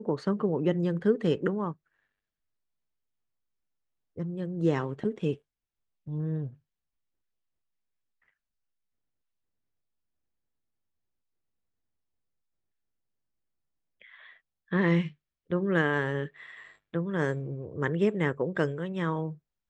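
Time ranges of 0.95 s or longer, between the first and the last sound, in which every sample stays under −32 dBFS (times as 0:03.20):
0:01.72–0:04.18
0:06.47–0:14.72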